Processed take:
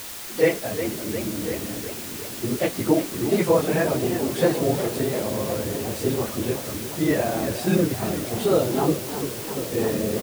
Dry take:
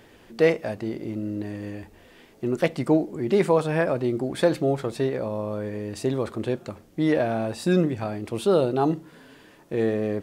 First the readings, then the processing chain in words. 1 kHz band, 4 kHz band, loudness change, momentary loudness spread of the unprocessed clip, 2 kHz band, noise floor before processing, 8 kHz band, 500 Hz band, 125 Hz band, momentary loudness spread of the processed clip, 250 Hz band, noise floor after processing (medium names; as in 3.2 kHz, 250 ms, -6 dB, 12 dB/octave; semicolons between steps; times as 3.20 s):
+1.0 dB, +6.5 dB, +1.0 dB, 11 LU, +2.0 dB, -53 dBFS, +14.0 dB, +0.5 dB, +1.0 dB, 8 LU, +1.0 dB, -34 dBFS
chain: phase randomisation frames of 50 ms; echo from a far wall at 180 m, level -13 dB; word length cut 6-bit, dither triangular; modulated delay 351 ms, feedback 70%, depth 174 cents, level -11 dB